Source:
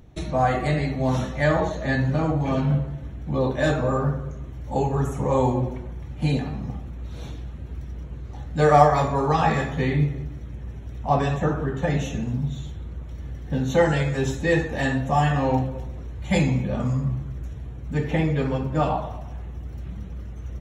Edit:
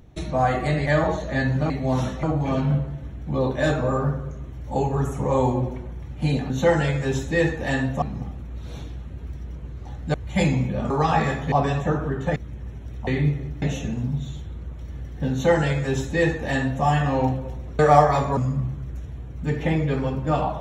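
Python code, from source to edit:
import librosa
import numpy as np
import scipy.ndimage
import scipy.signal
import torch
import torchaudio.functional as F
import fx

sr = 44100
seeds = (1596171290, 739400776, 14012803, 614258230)

y = fx.edit(x, sr, fx.move(start_s=0.86, length_s=0.53, to_s=2.23),
    fx.swap(start_s=8.62, length_s=0.58, other_s=16.09, other_length_s=0.76),
    fx.swap(start_s=9.82, length_s=0.55, other_s=11.08, other_length_s=0.84),
    fx.duplicate(start_s=13.62, length_s=1.52, to_s=6.5), tone=tone)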